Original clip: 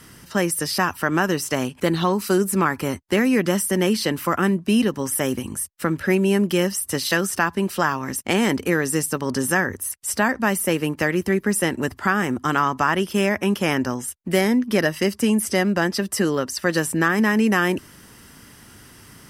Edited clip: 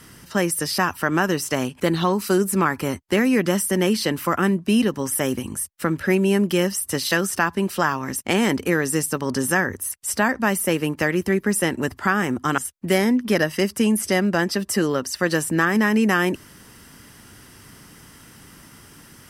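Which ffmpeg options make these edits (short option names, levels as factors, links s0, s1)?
-filter_complex "[0:a]asplit=2[s0][s1];[s0]atrim=end=12.582[s2];[s1]atrim=start=14.008[s3];[s2][s3]acrossfade=d=0.004:c1=hsin:c2=hsin"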